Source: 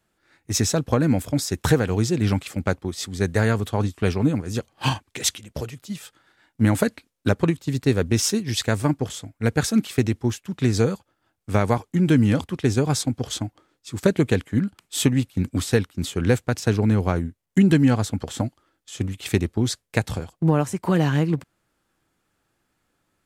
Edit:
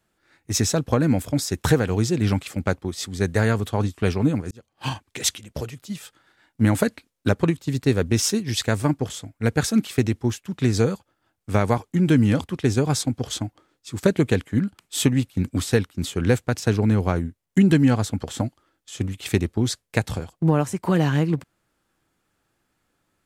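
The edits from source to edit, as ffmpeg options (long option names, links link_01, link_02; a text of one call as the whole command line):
ffmpeg -i in.wav -filter_complex "[0:a]asplit=2[link_01][link_02];[link_01]atrim=end=4.51,asetpts=PTS-STARTPTS,afade=type=out:start_time=4.506:duration=0.004:curve=hsin[link_03];[link_02]atrim=start=4.51,asetpts=PTS-STARTPTS,afade=type=in:duration=0.69[link_04];[link_03][link_04]concat=n=2:v=0:a=1" out.wav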